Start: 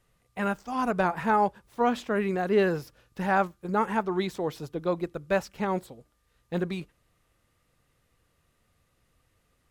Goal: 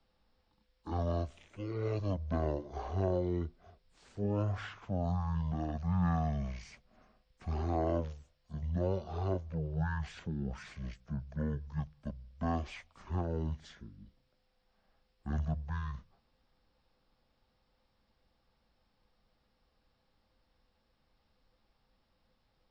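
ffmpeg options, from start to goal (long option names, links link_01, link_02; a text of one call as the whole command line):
ffmpeg -i in.wav -filter_complex "[0:a]acrossover=split=340|1200|2200[link_01][link_02][link_03][link_04];[link_02]acompressor=threshold=-38dB:ratio=6[link_05];[link_01][link_05][link_03][link_04]amix=inputs=4:normalize=0,asetrate=18846,aresample=44100,volume=-4dB" out.wav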